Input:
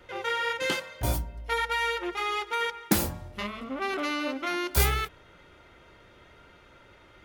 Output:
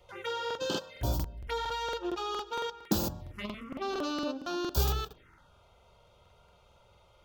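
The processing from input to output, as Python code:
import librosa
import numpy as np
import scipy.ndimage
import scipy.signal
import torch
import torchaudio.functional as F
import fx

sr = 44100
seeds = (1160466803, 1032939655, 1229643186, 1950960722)

p1 = fx.level_steps(x, sr, step_db=16)
p2 = x + F.gain(torch.from_numpy(p1), -1.0).numpy()
p3 = fx.env_phaser(p2, sr, low_hz=260.0, high_hz=2100.0, full_db=-25.5)
p4 = fx.buffer_crackle(p3, sr, first_s=0.46, period_s=0.23, block=2048, kind='repeat')
y = F.gain(torch.from_numpy(p4), -5.5).numpy()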